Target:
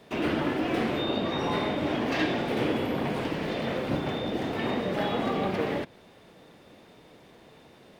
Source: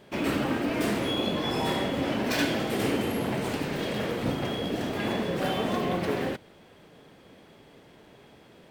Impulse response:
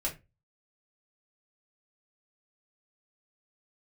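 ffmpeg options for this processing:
-filter_complex "[0:a]acrossover=split=130|3800[a][b][c];[c]acompressor=threshold=-56dB:ratio=10[d];[a][b][d]amix=inputs=3:normalize=0,asetrate=48000,aresample=44100"

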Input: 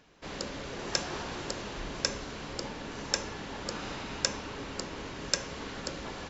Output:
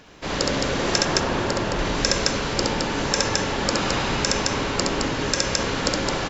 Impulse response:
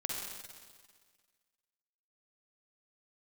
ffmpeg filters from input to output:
-filter_complex "[0:a]asettb=1/sr,asplit=3[a][b][c];[a]atrim=end=0.984[d];[b]atrim=start=0.98:end=1.79,asetpts=PTS-STARTPTS,afade=t=in:d=0.004:c=qsin,afade=t=out:st=0.806:d=0.004:c=qsin,highshelf=f=2.9k:g=-8.5[e];[c]atrim=start=1.786[f];[d][e]acrossfade=d=0.004:c1=hsin:c2=qsin[g];[g][f]acrossfade=d=0.004:c1=qsin:c2=hsin,aecho=1:1:67.06|215.7:0.708|0.631,alimiter=level_in=13.5dB:limit=-1dB:release=50:level=0:latency=1,volume=-1dB"

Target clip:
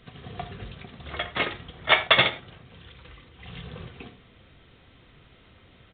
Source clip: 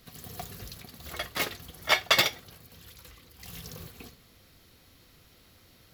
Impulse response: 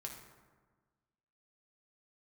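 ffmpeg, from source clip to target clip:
-filter_complex "[0:a]asplit=2[a][b];[1:a]atrim=start_sample=2205,afade=t=out:st=0.15:d=0.01,atrim=end_sample=7056[c];[b][c]afir=irnorm=-1:irlink=0,volume=3dB[d];[a][d]amix=inputs=2:normalize=0,aresample=8000,aresample=44100"

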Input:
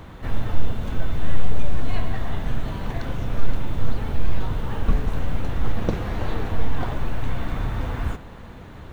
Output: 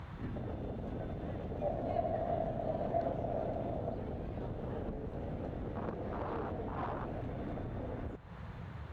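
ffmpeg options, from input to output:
-filter_complex "[0:a]highpass=46,afwtdn=0.0355,acompressor=threshold=-38dB:ratio=6,asplit=2[a][b];[b]highpass=f=720:p=1,volume=18dB,asoftclip=type=tanh:threshold=-29.5dB[c];[a][c]amix=inputs=2:normalize=0,lowpass=f=1.9k:p=1,volume=-6dB,asettb=1/sr,asplit=3[d][e][f];[d]atrim=end=1.604[g];[e]atrim=start=1.6:end=3.94,asetpts=PTS-STARTPTS,afade=t=in:d=0.004:c=qsin,afade=t=out:st=2.336:d=0.004:c=qsin,equalizer=f=660:w=3.4:g=13.5[h];[f]atrim=start=3.936[i];[g][h]acrossfade=d=0.004:c1=hsin:c2=qsin[j];[j][i]acrossfade=d=0.004:c1=qsin:c2=hsin,volume=1dB"

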